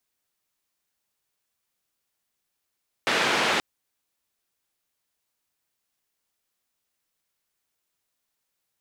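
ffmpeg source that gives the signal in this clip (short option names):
-f lavfi -i "anoisesrc=c=white:d=0.53:r=44100:seed=1,highpass=f=210,lowpass=f=2700,volume=-9.6dB"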